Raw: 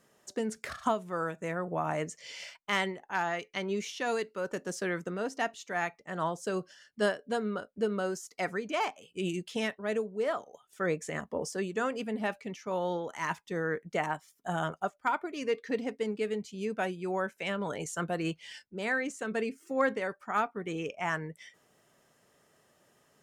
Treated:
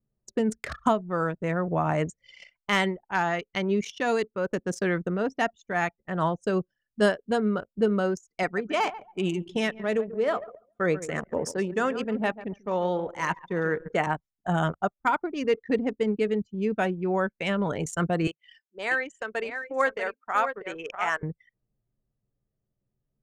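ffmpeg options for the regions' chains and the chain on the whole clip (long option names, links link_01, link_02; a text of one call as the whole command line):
ffmpeg -i in.wav -filter_complex "[0:a]asettb=1/sr,asplit=3[link_01][link_02][link_03];[link_01]atrim=end=8.434[link_04];[link_02]atrim=start=8.43:end=14.07,asetpts=PTS-STARTPTS,afade=type=in:duration=0.004:curve=qsin,afade=type=out:start_time=5.636:duration=0.004:curve=qsin,lowshelf=frequency=130:gain=-11,aecho=1:1:139|278|417|556|695:0.224|0.107|0.0516|0.0248|0.0119,atrim=end_sample=248724[link_05];[link_03]atrim=start=14.066[link_06];[link_04][link_05]acrossfade=duration=0.004:curve1=hsin:curve2=qsin[link_07];[link_07][link_06]acrossfade=duration=0.004:curve1=qsin:curve2=hsin,asettb=1/sr,asplit=3[link_08][link_09][link_10];[link_08]atrim=end=18.274[link_11];[link_09]atrim=start=18.27:end=21.23,asetpts=PTS-STARTPTS,afade=type=in:duration=0.004:curve=qsin,afade=type=out:start_time=2.956:duration=0.004:curve=qsin,highpass=570,aecho=1:1:640:0.398,atrim=end_sample=130536[link_12];[link_10]atrim=start=21.226[link_13];[link_11][link_12]acrossfade=duration=0.004:curve1=hsin:curve2=qsin[link_14];[link_14][link_13]acrossfade=duration=0.004:curve1=qsin:curve2=hsin,anlmdn=0.631,lowshelf=frequency=160:gain=11,volume=5dB" out.wav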